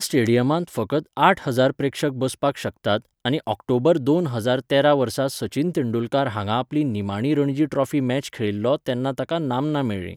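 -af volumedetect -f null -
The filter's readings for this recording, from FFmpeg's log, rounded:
mean_volume: -21.7 dB
max_volume: -1.7 dB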